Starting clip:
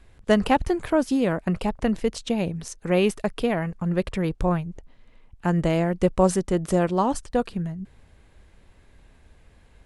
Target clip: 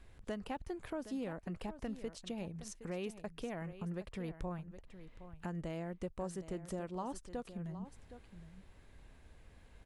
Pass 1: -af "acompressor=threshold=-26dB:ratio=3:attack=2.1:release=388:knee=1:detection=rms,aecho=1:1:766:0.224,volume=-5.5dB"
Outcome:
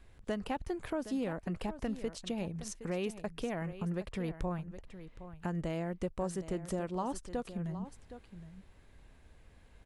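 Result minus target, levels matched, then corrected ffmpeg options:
downward compressor: peak gain reduction −5.5 dB
-af "acompressor=threshold=-34dB:ratio=3:attack=2.1:release=388:knee=1:detection=rms,aecho=1:1:766:0.224,volume=-5.5dB"

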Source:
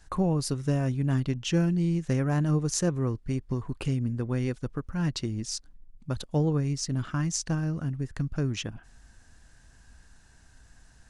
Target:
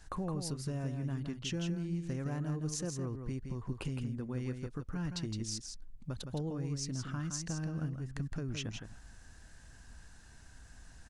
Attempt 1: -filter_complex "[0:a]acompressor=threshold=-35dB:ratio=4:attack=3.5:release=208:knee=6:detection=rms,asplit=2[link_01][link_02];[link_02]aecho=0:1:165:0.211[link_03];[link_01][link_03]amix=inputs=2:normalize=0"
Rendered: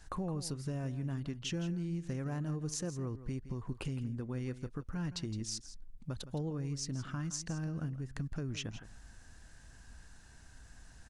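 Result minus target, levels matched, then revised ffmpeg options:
echo-to-direct −7 dB
-filter_complex "[0:a]acompressor=threshold=-35dB:ratio=4:attack=3.5:release=208:knee=6:detection=rms,asplit=2[link_01][link_02];[link_02]aecho=0:1:165:0.473[link_03];[link_01][link_03]amix=inputs=2:normalize=0"

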